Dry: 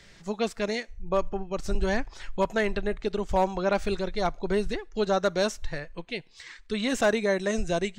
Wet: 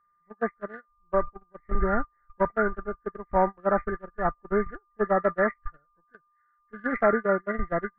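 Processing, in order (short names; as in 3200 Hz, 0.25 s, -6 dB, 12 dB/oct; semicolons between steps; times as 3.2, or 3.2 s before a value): nonlinear frequency compression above 1300 Hz 4:1; whine 1200 Hz -33 dBFS; gate -24 dBFS, range -35 dB; gain +1.5 dB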